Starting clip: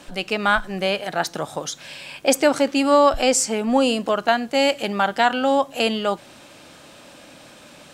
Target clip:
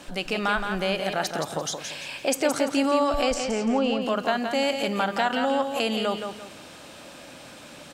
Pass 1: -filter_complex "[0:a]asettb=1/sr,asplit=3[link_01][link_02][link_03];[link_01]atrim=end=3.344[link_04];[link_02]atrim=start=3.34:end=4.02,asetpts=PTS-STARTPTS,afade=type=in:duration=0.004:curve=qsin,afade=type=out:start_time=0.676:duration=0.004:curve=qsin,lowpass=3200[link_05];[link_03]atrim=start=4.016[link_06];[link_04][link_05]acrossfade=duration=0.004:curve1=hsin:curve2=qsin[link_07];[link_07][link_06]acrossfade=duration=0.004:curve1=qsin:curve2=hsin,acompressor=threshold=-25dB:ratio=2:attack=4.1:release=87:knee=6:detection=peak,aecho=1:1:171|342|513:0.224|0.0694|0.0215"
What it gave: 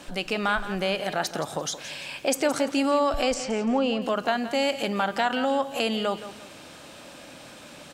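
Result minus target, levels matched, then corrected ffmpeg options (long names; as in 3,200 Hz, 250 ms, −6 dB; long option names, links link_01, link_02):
echo-to-direct −6.5 dB
-filter_complex "[0:a]asettb=1/sr,asplit=3[link_01][link_02][link_03];[link_01]atrim=end=3.344[link_04];[link_02]atrim=start=3.34:end=4.02,asetpts=PTS-STARTPTS,afade=type=in:duration=0.004:curve=qsin,afade=type=out:start_time=0.676:duration=0.004:curve=qsin,lowpass=3200[link_05];[link_03]atrim=start=4.016[link_06];[link_04][link_05]acrossfade=duration=0.004:curve1=hsin:curve2=qsin[link_07];[link_07][link_06]acrossfade=duration=0.004:curve1=qsin:curve2=hsin,acompressor=threshold=-25dB:ratio=2:attack=4.1:release=87:knee=6:detection=peak,aecho=1:1:171|342|513|684:0.473|0.147|0.0455|0.0141"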